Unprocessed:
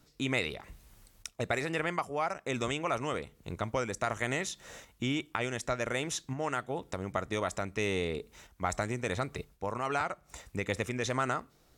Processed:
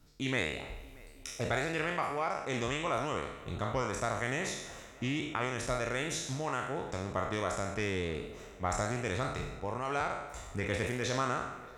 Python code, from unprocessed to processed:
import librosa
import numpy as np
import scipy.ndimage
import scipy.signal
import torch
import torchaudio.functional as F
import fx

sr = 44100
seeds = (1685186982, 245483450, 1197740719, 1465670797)

p1 = fx.spec_trails(x, sr, decay_s=0.88)
p2 = fx.low_shelf(p1, sr, hz=93.0, db=9.0)
p3 = p2 + fx.echo_tape(p2, sr, ms=315, feedback_pct=88, wet_db=-19.0, lp_hz=3400.0, drive_db=18.0, wow_cents=7, dry=0)
p4 = fx.doppler_dist(p3, sr, depth_ms=0.15)
y = p4 * 10.0 ** (-4.0 / 20.0)